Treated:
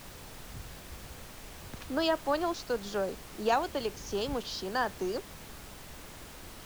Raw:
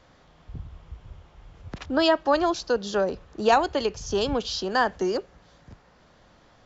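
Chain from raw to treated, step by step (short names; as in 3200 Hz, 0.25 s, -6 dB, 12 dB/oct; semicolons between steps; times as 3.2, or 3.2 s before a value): added noise pink -39 dBFS; gain -8 dB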